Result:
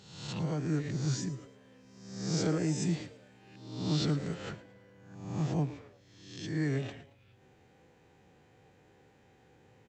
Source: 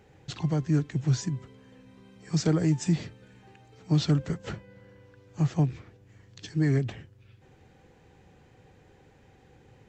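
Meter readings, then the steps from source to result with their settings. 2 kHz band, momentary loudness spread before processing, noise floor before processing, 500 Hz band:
-2.0 dB, 18 LU, -58 dBFS, -3.0 dB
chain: reverse spectral sustain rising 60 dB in 0.87 s; high-pass 130 Hz 6 dB/octave; frequency-shifting echo 112 ms, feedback 33%, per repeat +140 Hz, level -17.5 dB; trim -6 dB

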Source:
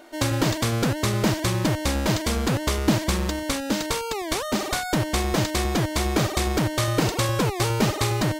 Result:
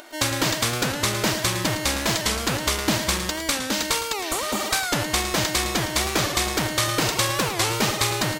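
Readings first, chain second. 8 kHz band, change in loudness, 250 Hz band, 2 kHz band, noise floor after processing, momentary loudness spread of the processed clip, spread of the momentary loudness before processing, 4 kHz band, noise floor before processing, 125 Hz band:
+6.0 dB, +1.5 dB, -3.5 dB, +4.5 dB, -30 dBFS, 3 LU, 3 LU, +5.5 dB, -31 dBFS, -5.5 dB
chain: spectral replace 4.25–4.61 s, 1.4–6.5 kHz after; upward compressor, threshold -41 dBFS; tilt shelf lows -5.5 dB, about 740 Hz; multi-tap echo 110/696 ms -10.5/-18.5 dB; warped record 45 rpm, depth 100 cents

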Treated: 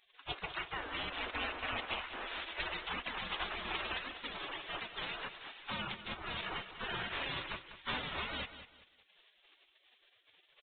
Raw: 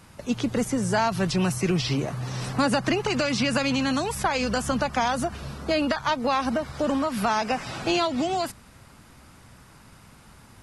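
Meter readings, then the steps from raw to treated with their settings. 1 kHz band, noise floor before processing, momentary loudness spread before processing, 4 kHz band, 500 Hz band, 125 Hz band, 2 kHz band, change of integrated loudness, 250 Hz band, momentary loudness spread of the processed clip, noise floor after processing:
-15.5 dB, -52 dBFS, 5 LU, -8.0 dB, -21.0 dB, -22.0 dB, -8.5 dB, -14.5 dB, -25.5 dB, 5 LU, -71 dBFS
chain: spectral gate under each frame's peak -25 dB weak; on a send: feedback delay 196 ms, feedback 27%, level -12 dB; on the sum: resampled via 8 kHz; trim +3 dB

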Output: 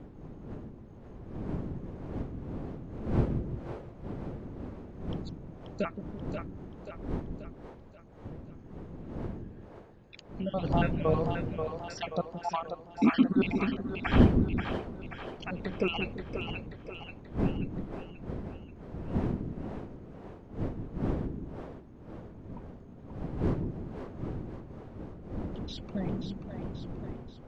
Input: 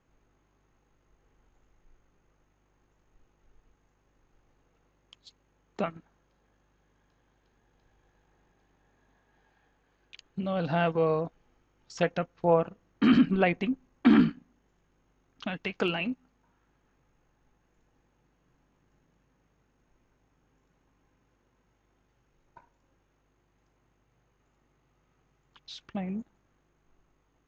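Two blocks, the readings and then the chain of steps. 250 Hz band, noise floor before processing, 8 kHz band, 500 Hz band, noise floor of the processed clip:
-1.0 dB, -72 dBFS, no reading, -2.5 dB, -50 dBFS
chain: random holes in the spectrogram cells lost 49%; wind noise 260 Hz -37 dBFS; two-band feedback delay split 400 Hz, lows 170 ms, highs 533 ms, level -6 dB

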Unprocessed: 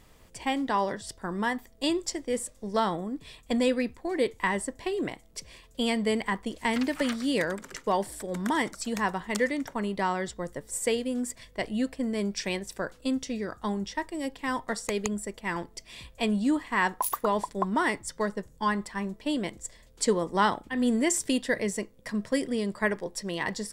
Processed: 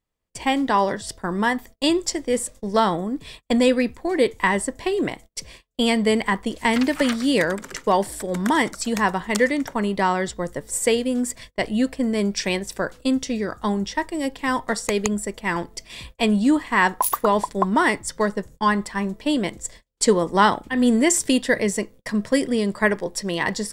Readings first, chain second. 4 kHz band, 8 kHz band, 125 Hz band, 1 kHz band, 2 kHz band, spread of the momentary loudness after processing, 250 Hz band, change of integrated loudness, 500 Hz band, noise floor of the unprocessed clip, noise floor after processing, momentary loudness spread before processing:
+7.5 dB, +7.5 dB, +7.5 dB, +7.5 dB, +7.5 dB, 9 LU, +7.5 dB, +7.5 dB, +7.5 dB, -56 dBFS, -56 dBFS, 9 LU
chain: gate -48 dBFS, range -34 dB; trim +7.5 dB

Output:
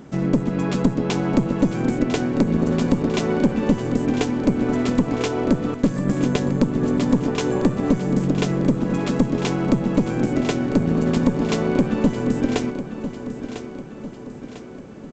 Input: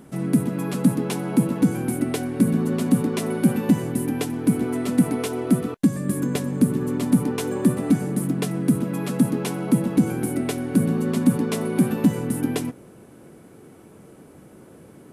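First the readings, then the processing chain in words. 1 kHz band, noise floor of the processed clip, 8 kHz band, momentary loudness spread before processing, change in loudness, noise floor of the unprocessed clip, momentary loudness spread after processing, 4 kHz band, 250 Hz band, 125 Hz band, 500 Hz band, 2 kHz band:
+4.5 dB, -37 dBFS, -4.0 dB, 5 LU, +1.5 dB, -48 dBFS, 12 LU, +4.5 dB, +1.0 dB, +1.5 dB, +4.5 dB, +4.0 dB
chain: Chebyshev shaper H 4 -14 dB, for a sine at -5 dBFS; compression 4:1, threshold -19 dBFS, peak gain reduction 8 dB; feedback delay 999 ms, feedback 51%, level -11 dB; resampled via 16 kHz; trim +4.5 dB

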